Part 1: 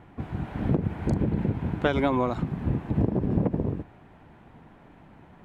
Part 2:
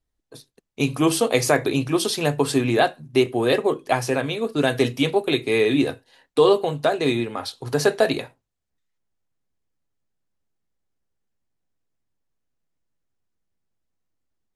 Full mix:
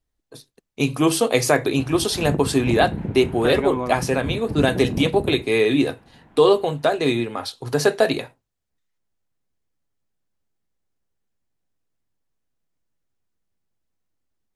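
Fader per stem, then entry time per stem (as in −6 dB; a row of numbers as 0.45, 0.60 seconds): −1.5, +1.0 decibels; 1.60, 0.00 seconds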